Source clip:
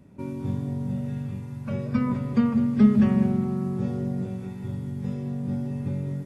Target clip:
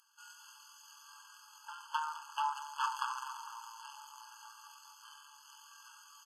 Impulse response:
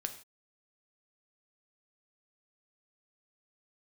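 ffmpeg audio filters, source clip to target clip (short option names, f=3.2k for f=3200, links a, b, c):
-filter_complex "[0:a]aderivative,bandreject=f=175.8:t=h:w=4,bandreject=f=351.6:t=h:w=4,bandreject=f=527.4:t=h:w=4,acrossover=split=1100[a][b];[a]dynaudnorm=f=340:g=9:m=13dB[c];[b]aeval=exprs='max(val(0),0)':c=same[d];[c][d]amix=inputs=2:normalize=0,asetrate=26990,aresample=44100,atempo=1.63392,aeval=exprs='0.0562*(cos(1*acos(clip(val(0)/0.0562,-1,1)))-cos(1*PI/2))+0.0224*(cos(4*acos(clip(val(0)/0.0562,-1,1)))-cos(4*PI/2))':c=same,asplit=2[e][f];[f]adelay=454.8,volume=-13dB,highshelf=f=4k:g=-10.2[g];[e][g]amix=inputs=2:normalize=0,afftfilt=real='re*eq(mod(floor(b*sr/1024/860),2),1)':imag='im*eq(mod(floor(b*sr/1024/860),2),1)':win_size=1024:overlap=0.75,volume=16dB"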